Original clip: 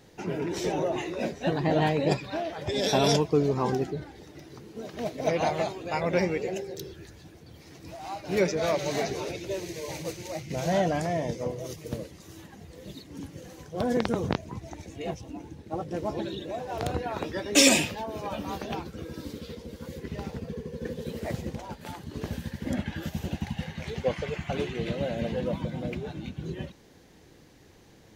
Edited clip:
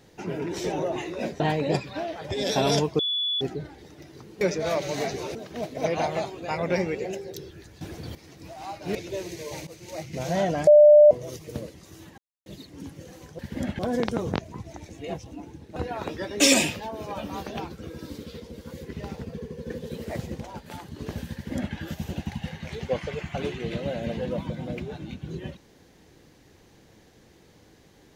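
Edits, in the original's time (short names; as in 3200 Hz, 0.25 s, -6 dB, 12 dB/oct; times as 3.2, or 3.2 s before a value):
1.4–1.77 cut
3.36–3.78 bleep 3430 Hz -23.5 dBFS
7.24–7.58 gain +12 dB
8.38–9.32 move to 4.78
10.04–10.34 fade in, from -16 dB
11.04–11.48 bleep 596 Hz -9 dBFS
12.55–12.83 mute
15.73–16.91 cut
22.49–22.89 copy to 13.76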